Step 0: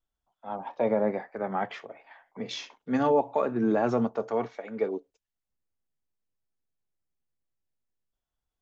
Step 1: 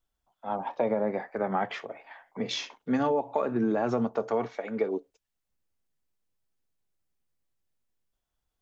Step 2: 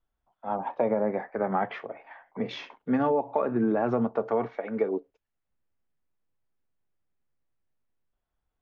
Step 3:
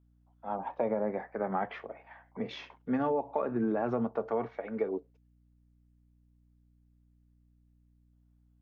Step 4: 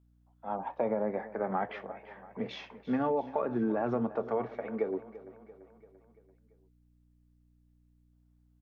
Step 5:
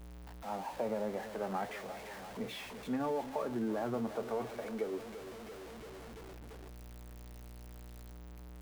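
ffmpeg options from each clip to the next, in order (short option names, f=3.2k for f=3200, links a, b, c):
-af "acompressor=threshold=-27dB:ratio=6,volume=4dB"
-af "lowpass=2.2k,volume=1.5dB"
-af "aeval=exprs='val(0)+0.00112*(sin(2*PI*60*n/s)+sin(2*PI*2*60*n/s)/2+sin(2*PI*3*60*n/s)/3+sin(2*PI*4*60*n/s)/4+sin(2*PI*5*60*n/s)/5)':c=same,volume=-5dB"
-af "aecho=1:1:340|680|1020|1360|1700:0.15|0.0823|0.0453|0.0249|0.0137"
-af "aeval=exprs='val(0)+0.5*0.0141*sgn(val(0))':c=same,volume=-6.5dB"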